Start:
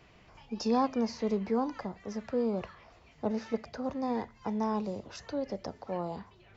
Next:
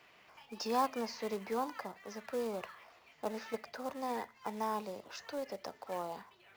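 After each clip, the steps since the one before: HPF 1400 Hz 6 dB/oct; high shelf 4100 Hz -9.5 dB; short-mantissa float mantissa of 2-bit; gain +4.5 dB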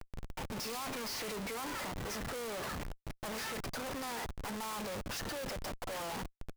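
CVSD 64 kbps; pre-emphasis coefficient 0.8; Schmitt trigger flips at -59 dBFS; gain +12.5 dB

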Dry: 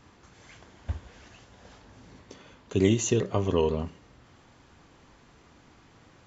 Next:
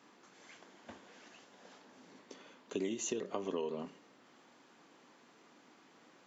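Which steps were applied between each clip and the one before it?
HPF 210 Hz 24 dB/oct; compressor 6:1, threshold -29 dBFS, peak gain reduction 11 dB; gain -4.5 dB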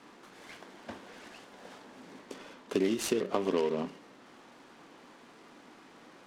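air absorption 63 m; noise-modulated delay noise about 1900 Hz, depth 0.031 ms; gain +8.5 dB

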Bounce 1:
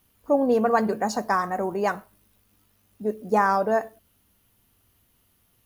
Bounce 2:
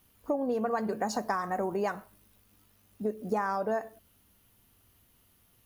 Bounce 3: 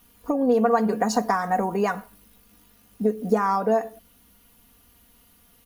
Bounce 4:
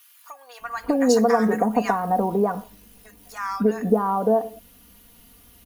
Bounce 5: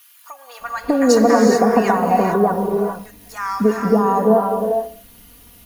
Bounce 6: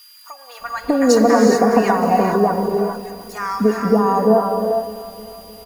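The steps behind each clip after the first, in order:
compressor 6:1, threshold -27 dBFS, peak gain reduction 11.5 dB
comb 4.2 ms, depth 67%; gain +6.5 dB
in parallel at -1 dB: compressor, threshold -27 dBFS, peak gain reduction 12 dB; on the sum: bands offset in time highs, lows 0.6 s, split 1200 Hz
non-linear reverb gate 0.46 s rising, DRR 2.5 dB; gain +4 dB
feedback echo 0.306 s, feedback 59%, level -16.5 dB; whine 4800 Hz -45 dBFS

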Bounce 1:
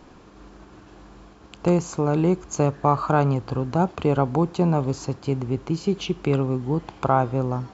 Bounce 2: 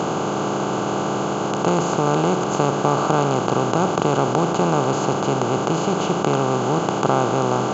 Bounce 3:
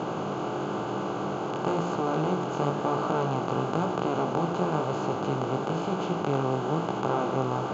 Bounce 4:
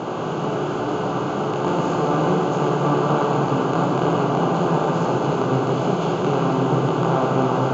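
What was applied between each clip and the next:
per-bin compression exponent 0.2; HPF 110 Hz 12 dB/oct; gain -4.5 dB
air absorption 130 m; chorus 1 Hz, delay 16 ms, depth 7.1 ms; gain -5 dB
reverb RT60 4.2 s, pre-delay 20 ms, DRR -1.5 dB; gain +3.5 dB

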